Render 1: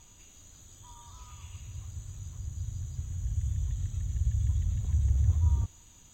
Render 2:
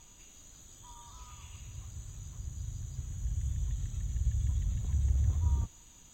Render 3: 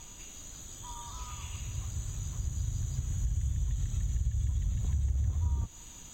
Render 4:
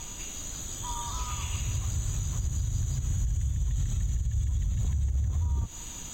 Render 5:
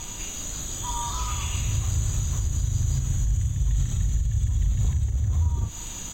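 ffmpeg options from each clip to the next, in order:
-af "equalizer=f=90:w=2.6:g=-7"
-af "acompressor=threshold=0.0158:ratio=4,volume=2.51"
-af "alimiter=level_in=2:limit=0.0631:level=0:latency=1:release=95,volume=0.501,volume=2.66"
-filter_complex "[0:a]asplit=2[s0][s1];[s1]adelay=38,volume=0.447[s2];[s0][s2]amix=inputs=2:normalize=0,volume=1.58"

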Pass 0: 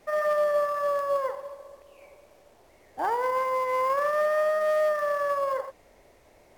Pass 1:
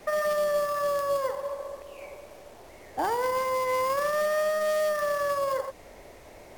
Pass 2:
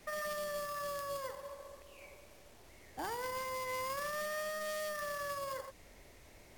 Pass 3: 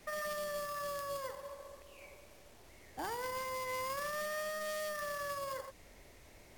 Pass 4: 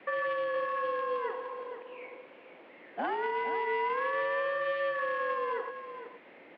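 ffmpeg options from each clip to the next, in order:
-filter_complex "[0:a]acrossover=split=320|3000[s0][s1][s2];[s1]acompressor=threshold=0.0126:ratio=4[s3];[s0][s3][s2]amix=inputs=3:normalize=0,volume=2.82"
-af "equalizer=f=630:w=0.61:g=-10,volume=0.562"
-af anull
-filter_complex "[0:a]highpass=f=310:t=q:w=0.5412,highpass=f=310:t=q:w=1.307,lowpass=f=3000:t=q:w=0.5176,lowpass=f=3000:t=q:w=0.7071,lowpass=f=3000:t=q:w=1.932,afreqshift=-63,asplit=2[s0][s1];[s1]aecho=0:1:465:0.299[s2];[s0][s2]amix=inputs=2:normalize=0,volume=2.51"

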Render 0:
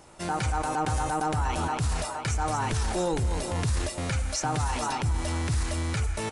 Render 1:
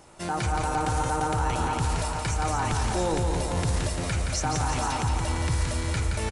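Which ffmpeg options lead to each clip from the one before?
-af "aecho=1:1:172|344|516|688|860|1032|1204:0.562|0.315|0.176|0.0988|0.0553|0.031|0.0173"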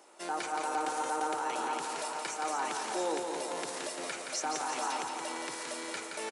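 -af "highpass=f=310:w=0.5412,highpass=f=310:w=1.3066,volume=0.562"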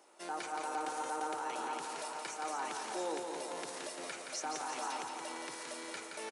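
-af "bandreject=f=7500:w=27,volume=0.562"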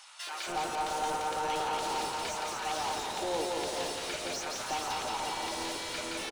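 -filter_complex "[0:a]highshelf=f=2600:t=q:w=1.5:g=7,asplit=2[s0][s1];[s1]highpass=f=720:p=1,volume=20,asoftclip=type=tanh:threshold=0.0891[s2];[s0][s2]amix=inputs=2:normalize=0,lowpass=f=1400:p=1,volume=0.501,acrossover=split=1100[s3][s4];[s3]adelay=270[s5];[s5][s4]amix=inputs=2:normalize=0"

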